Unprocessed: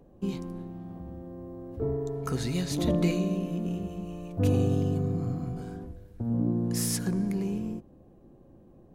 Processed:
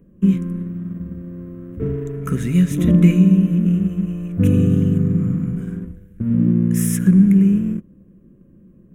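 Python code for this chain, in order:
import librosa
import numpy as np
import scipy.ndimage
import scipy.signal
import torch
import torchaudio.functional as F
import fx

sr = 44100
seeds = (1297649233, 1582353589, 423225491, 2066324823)

p1 = fx.peak_eq(x, sr, hz=190.0, db=12.0, octaves=0.4)
p2 = np.sign(p1) * np.maximum(np.abs(p1) - 10.0 ** (-41.5 / 20.0), 0.0)
p3 = p1 + (p2 * 10.0 ** (-3.0 / 20.0))
p4 = fx.fixed_phaser(p3, sr, hz=1900.0, stages=4)
y = p4 * 10.0 ** (3.5 / 20.0)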